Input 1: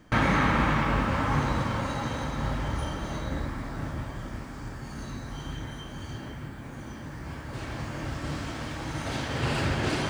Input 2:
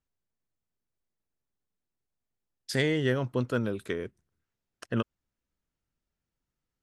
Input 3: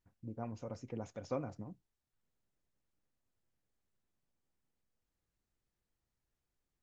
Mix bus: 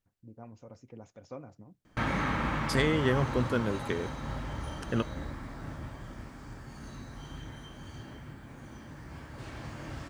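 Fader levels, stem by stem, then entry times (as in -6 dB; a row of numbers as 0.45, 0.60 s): -7.0, -0.5, -5.5 dB; 1.85, 0.00, 0.00 s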